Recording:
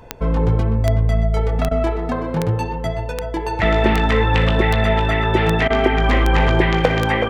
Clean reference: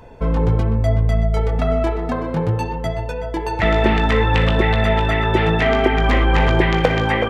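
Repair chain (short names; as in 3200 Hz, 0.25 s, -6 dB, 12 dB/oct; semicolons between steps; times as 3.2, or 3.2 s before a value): de-click; interpolate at 1.69/5.68, 21 ms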